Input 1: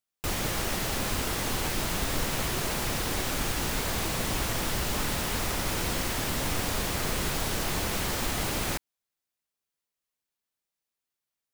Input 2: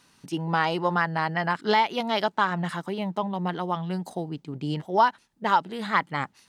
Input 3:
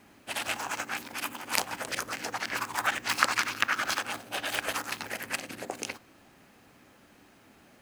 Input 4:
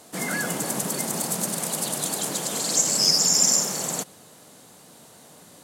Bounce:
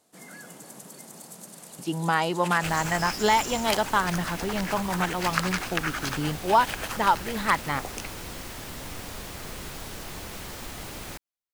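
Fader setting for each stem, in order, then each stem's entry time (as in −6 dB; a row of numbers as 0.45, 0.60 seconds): −8.5, 0.0, −2.5, −17.5 decibels; 2.40, 1.55, 2.15, 0.00 seconds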